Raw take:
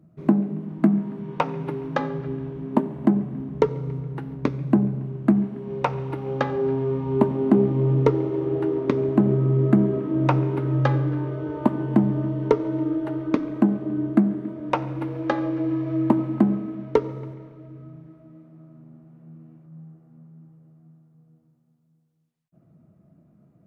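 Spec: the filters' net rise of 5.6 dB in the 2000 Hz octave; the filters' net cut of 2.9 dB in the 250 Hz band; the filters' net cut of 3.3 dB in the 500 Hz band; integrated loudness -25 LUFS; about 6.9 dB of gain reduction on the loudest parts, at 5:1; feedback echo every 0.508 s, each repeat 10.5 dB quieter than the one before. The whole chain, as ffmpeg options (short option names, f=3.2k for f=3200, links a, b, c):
-af "equalizer=f=250:t=o:g=-3,equalizer=f=500:t=o:g=-3.5,equalizer=f=2k:t=o:g=7.5,acompressor=threshold=-24dB:ratio=5,aecho=1:1:508|1016|1524:0.299|0.0896|0.0269,volume=5dB"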